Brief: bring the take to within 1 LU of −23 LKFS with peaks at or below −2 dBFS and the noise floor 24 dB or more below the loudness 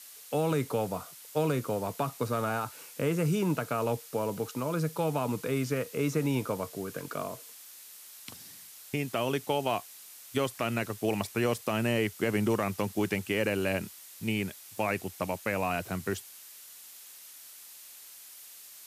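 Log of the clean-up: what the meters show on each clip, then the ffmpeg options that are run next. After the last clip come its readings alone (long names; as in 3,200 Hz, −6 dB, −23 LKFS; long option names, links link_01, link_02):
background noise floor −50 dBFS; target noise floor −56 dBFS; integrated loudness −31.5 LKFS; sample peak −16.0 dBFS; target loudness −23.0 LKFS
→ -af "afftdn=noise_reduction=6:noise_floor=-50"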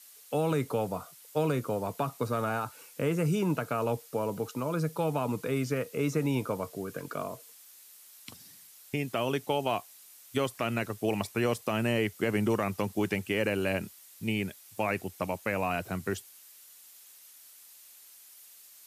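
background noise floor −54 dBFS; target noise floor −56 dBFS
→ -af "afftdn=noise_reduction=6:noise_floor=-54"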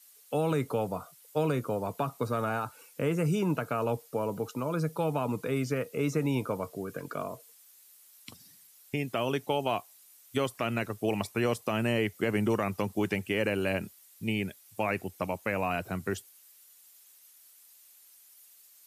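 background noise floor −58 dBFS; integrated loudness −31.5 LKFS; sample peak −16.0 dBFS; target loudness −23.0 LKFS
→ -af "volume=8.5dB"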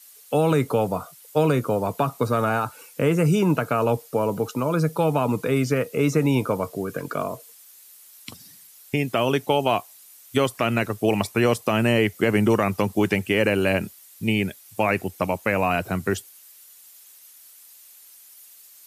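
integrated loudness −23.0 LKFS; sample peak −7.5 dBFS; background noise floor −49 dBFS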